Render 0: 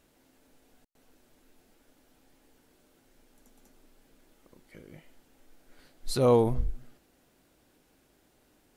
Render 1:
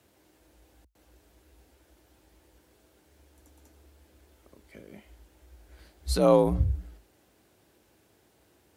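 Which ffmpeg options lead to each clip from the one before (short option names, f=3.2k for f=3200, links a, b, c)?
-af "afreqshift=51,volume=1.5dB"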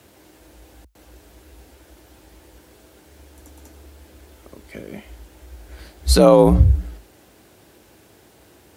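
-af "alimiter=level_in=14dB:limit=-1dB:release=50:level=0:latency=1,volume=-1dB"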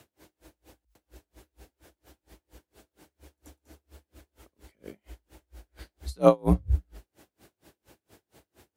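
-af "aeval=exprs='val(0)*pow(10,-37*(0.5-0.5*cos(2*PI*4.3*n/s))/20)':c=same,volume=-3dB"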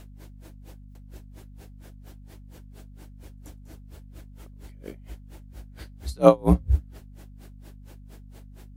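-af "aeval=exprs='val(0)+0.00398*(sin(2*PI*50*n/s)+sin(2*PI*2*50*n/s)/2+sin(2*PI*3*50*n/s)/3+sin(2*PI*4*50*n/s)/4+sin(2*PI*5*50*n/s)/5)':c=same,volume=3.5dB"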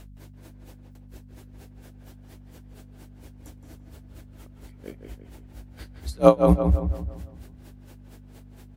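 -filter_complex "[0:a]asplit=2[a][b];[b]adelay=168,lowpass=f=2.8k:p=1,volume=-6dB,asplit=2[c][d];[d]adelay=168,lowpass=f=2.8k:p=1,volume=0.46,asplit=2[e][f];[f]adelay=168,lowpass=f=2.8k:p=1,volume=0.46,asplit=2[g][h];[h]adelay=168,lowpass=f=2.8k:p=1,volume=0.46,asplit=2[i][j];[j]adelay=168,lowpass=f=2.8k:p=1,volume=0.46,asplit=2[k][l];[l]adelay=168,lowpass=f=2.8k:p=1,volume=0.46[m];[a][c][e][g][i][k][m]amix=inputs=7:normalize=0"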